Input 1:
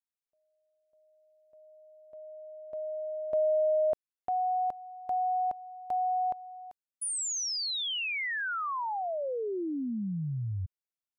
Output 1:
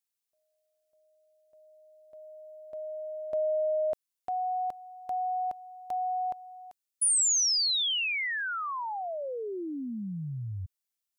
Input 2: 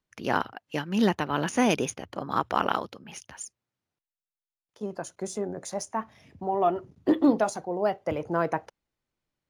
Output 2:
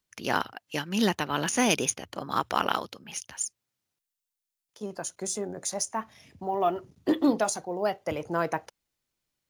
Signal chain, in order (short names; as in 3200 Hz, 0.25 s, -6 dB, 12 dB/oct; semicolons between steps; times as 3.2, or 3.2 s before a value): high shelf 2800 Hz +12 dB; gain -2.5 dB